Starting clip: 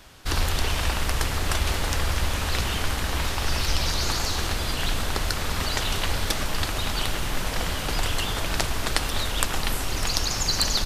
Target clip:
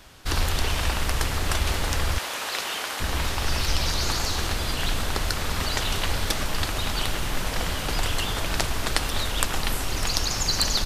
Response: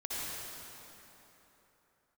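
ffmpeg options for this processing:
-filter_complex "[0:a]asettb=1/sr,asplit=3[s0][s1][s2];[s0]atrim=end=2.184[s3];[s1]atrim=start=2.18:end=3,asetpts=PTS-STARTPTS,afade=t=in:d=0.004:c=qsin,afade=t=out:st=0.816:d=0.004:c=qsin,highpass=460[s4];[s2]atrim=start=2.996[s5];[s3][s4]acrossfade=d=0.004:c1=hsin:c2=qsin[s6];[s6][s5]acrossfade=d=0.004:c1=qsin:c2=hsin"

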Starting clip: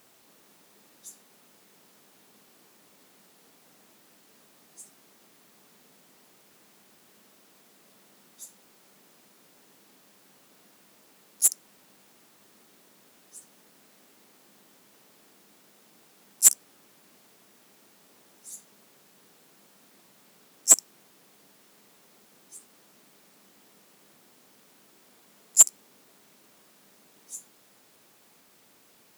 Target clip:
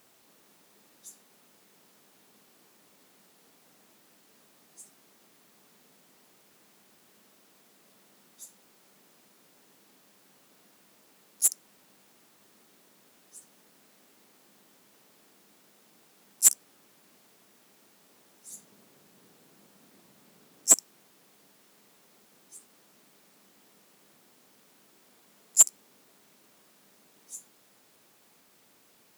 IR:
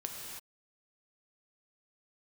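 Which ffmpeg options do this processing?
-filter_complex "[0:a]asettb=1/sr,asplit=3[s0][s1][s2];[s0]atrim=end=18.504[s3];[s1]atrim=start=18.5:end=20.74,asetpts=PTS-STARTPTS,afade=t=in:d=0.004:c=qsin,afade=t=out:st=2.236:d=0.004:c=qsin,lowshelf=f=420:g=7[s4];[s2]atrim=start=20.736[s5];[s3][s4]acrossfade=d=0.004:c1=hsin:c2=qsin[s6];[s6][s5]acrossfade=d=0.004:c1=qsin:c2=hsin,volume=0.75"

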